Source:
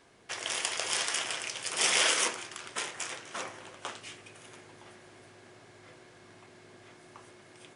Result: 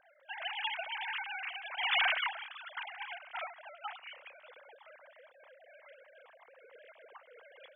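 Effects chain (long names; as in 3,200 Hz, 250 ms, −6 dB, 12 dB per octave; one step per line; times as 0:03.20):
three sine waves on the formant tracks
amplitude modulation by smooth noise, depth 55%
level −2 dB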